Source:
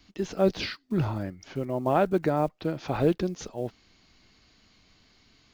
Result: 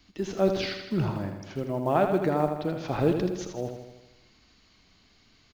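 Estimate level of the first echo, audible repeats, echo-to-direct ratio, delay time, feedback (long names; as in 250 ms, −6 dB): −7.0 dB, 7, −5.0 dB, 80 ms, 59%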